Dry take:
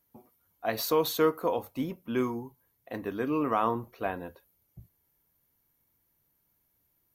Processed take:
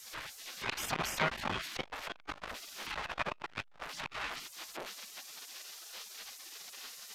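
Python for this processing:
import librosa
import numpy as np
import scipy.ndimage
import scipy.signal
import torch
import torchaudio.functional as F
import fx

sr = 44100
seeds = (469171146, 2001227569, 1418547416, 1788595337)

y = x + 0.5 * 10.0 ** (-37.0 / 20.0) * np.sign(x)
y = scipy.signal.sosfilt(scipy.signal.butter(2, 4000.0, 'lowpass', fs=sr, output='sos'), y)
y = fx.add_hum(y, sr, base_hz=50, snr_db=33)
y = fx.spec_gate(y, sr, threshold_db=-20, keep='weak')
y = fx.transformer_sat(y, sr, knee_hz=3100.0)
y = y * 10.0 ** (13.0 / 20.0)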